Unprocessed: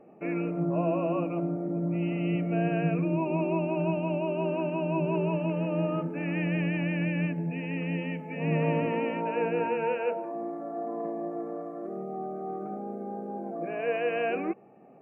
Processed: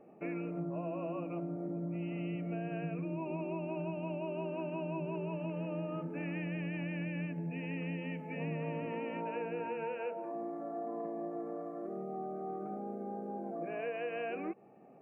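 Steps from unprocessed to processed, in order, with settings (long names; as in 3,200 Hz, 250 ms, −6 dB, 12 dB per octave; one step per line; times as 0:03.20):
downward compressor, threshold −31 dBFS, peak gain reduction 8.5 dB
level −4 dB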